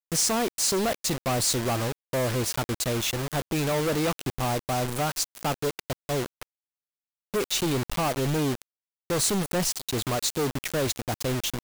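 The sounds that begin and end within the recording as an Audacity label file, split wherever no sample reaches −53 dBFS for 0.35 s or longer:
7.340000	8.620000	sound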